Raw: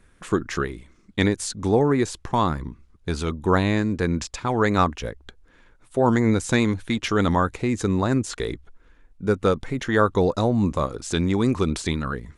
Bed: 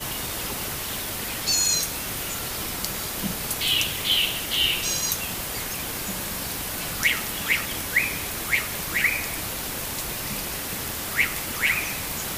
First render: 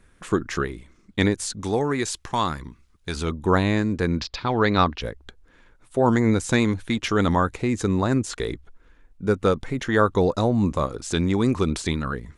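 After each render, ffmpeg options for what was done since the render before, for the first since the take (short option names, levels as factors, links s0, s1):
-filter_complex "[0:a]asettb=1/sr,asplit=3[s0][s1][s2];[s0]atrim=end=1.614[s3];[s1]atrim=start=1.61:end=3.16,asetpts=PTS-STARTPTS,afade=t=in:d=0.004:c=qsin,afade=t=out:st=1.546:d=0.004:c=qsin,tiltshelf=f=1300:g=-5.5[s4];[s2]atrim=start=3.156[s5];[s3][s4]acrossfade=d=0.004:c1=hsin:c2=qsin[s6];[s6][s5]acrossfade=d=0.004:c1=qsin:c2=hsin,asettb=1/sr,asplit=3[s7][s8][s9];[s7]atrim=end=4.184[s10];[s8]atrim=start=4.18:end=5.01,asetpts=PTS-STARTPTS,afade=t=in:d=0.004:c=qsin,afade=t=out:st=0.826:d=0.004:c=qsin,highshelf=f=6100:t=q:w=3:g=-12[s11];[s9]atrim=start=5.006[s12];[s10][s11]acrossfade=d=0.004:c1=hsin:c2=qsin[s13];[s13][s12]acrossfade=d=0.004:c1=qsin:c2=hsin"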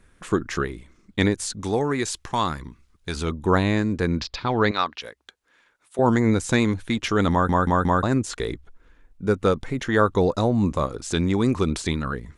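-filter_complex "[0:a]asettb=1/sr,asplit=3[s0][s1][s2];[s0]atrim=end=4.714[s3];[s1]atrim=start=4.71:end=5.99,asetpts=PTS-STARTPTS,afade=t=in:d=0.004:c=qsin,afade=t=out:st=1.276:d=0.004:c=qsin,highpass=f=1200:p=1[s4];[s2]atrim=start=5.986[s5];[s3][s4]acrossfade=d=0.004:c1=hsin:c2=qsin[s6];[s6][s5]acrossfade=d=0.004:c1=qsin:c2=hsin,asplit=5[s7][s8][s9][s10][s11];[s7]atrim=end=7.492[s12];[s8]atrim=start=7.308:end=7.492[s13];[s9]atrim=start=7.308:end=7.492[s14];[s10]atrim=start=7.308:end=7.492[s15];[s11]atrim=start=8.028[s16];[s12][s13]acrossfade=d=0.004:c1=hsin:c2=hsin[s17];[s17][s14]acrossfade=d=0.004:c1=hsin:c2=hsin[s18];[s18][s15]acrossfade=d=0.004:c1=hsin:c2=hsin[s19];[s19][s16]acrossfade=d=0.004:c1=hsin:c2=hsin"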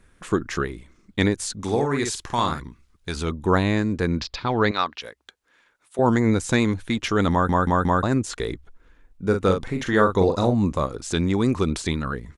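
-filter_complex "[0:a]asettb=1/sr,asplit=3[s0][s1][s2];[s0]atrim=end=1.584[s3];[s1]atrim=start=1.58:end=2.6,asetpts=PTS-STARTPTS,afade=t=in:d=0.004:c=qsin,afade=t=out:st=1.016:d=0.004:c=qsin,asplit=2[s4][s5];[s5]adelay=50,volume=0.531[s6];[s4][s6]amix=inputs=2:normalize=0,atrim=end_sample=44982[s7];[s2]atrim=start=2.596[s8];[s3][s7]acrossfade=d=0.004:c1=hsin:c2=qsin[s9];[s9][s8]acrossfade=d=0.004:c1=qsin:c2=hsin,asplit=3[s10][s11][s12];[s10]afade=t=out:st=9.31:d=0.02[s13];[s11]asplit=2[s14][s15];[s15]adelay=42,volume=0.501[s16];[s14][s16]amix=inputs=2:normalize=0,afade=t=in:st=9.31:d=0.02,afade=t=out:st=10.53:d=0.02[s17];[s12]afade=t=in:st=10.53:d=0.02[s18];[s13][s17][s18]amix=inputs=3:normalize=0"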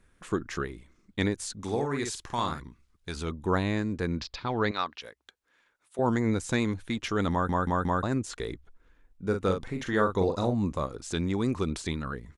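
-af "volume=0.447"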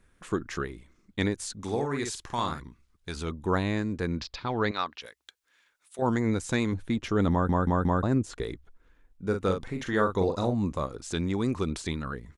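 -filter_complex "[0:a]asettb=1/sr,asplit=3[s0][s1][s2];[s0]atrim=end=5.064[s3];[s1]atrim=start=5.06:end=6.02,asetpts=PTS-STARTPTS,afade=t=in:d=0.004:c=qsin,afade=t=out:st=0.956:d=0.004:c=qsin,tiltshelf=f=1500:g=-6.5[s4];[s2]atrim=start=6.016[s5];[s3][s4]acrossfade=d=0.004:c1=hsin:c2=qsin[s6];[s6][s5]acrossfade=d=0.004:c1=qsin:c2=hsin,asettb=1/sr,asplit=3[s7][s8][s9];[s7]atrim=end=6.724[s10];[s8]atrim=start=6.72:end=8.43,asetpts=PTS-STARTPTS,afade=t=in:d=0.004:c=qsin,afade=t=out:st=1.706:d=0.004:c=qsin,tiltshelf=f=840:g=4.5[s11];[s9]atrim=start=8.426[s12];[s10][s11]acrossfade=d=0.004:c1=hsin:c2=qsin[s13];[s13][s12]acrossfade=d=0.004:c1=qsin:c2=hsin"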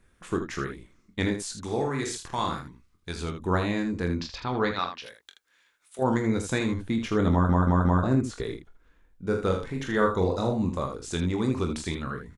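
-af "aecho=1:1:23|44|79:0.422|0.251|0.376"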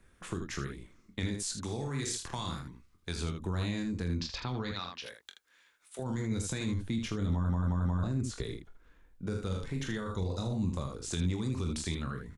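-filter_complex "[0:a]alimiter=limit=0.106:level=0:latency=1:release=17,acrossover=split=190|3000[s0][s1][s2];[s1]acompressor=threshold=0.0112:ratio=6[s3];[s0][s3][s2]amix=inputs=3:normalize=0"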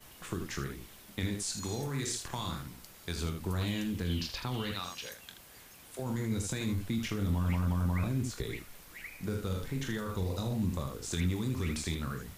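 -filter_complex "[1:a]volume=0.0631[s0];[0:a][s0]amix=inputs=2:normalize=0"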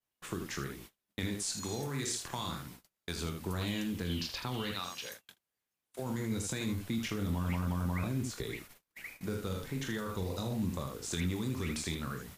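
-af "agate=range=0.0178:threshold=0.00447:ratio=16:detection=peak,lowshelf=f=77:g=-11"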